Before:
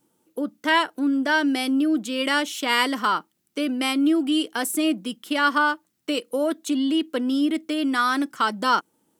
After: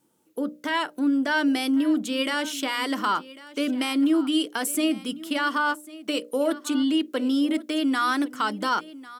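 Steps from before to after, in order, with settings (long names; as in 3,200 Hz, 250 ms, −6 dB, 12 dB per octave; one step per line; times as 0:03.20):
tape wow and flutter 21 cents
brickwall limiter −15 dBFS, peak gain reduction 8.5 dB
mains-hum notches 60/120/180/240/300/360/420/480/540/600 Hz
on a send: single-tap delay 1,098 ms −18.5 dB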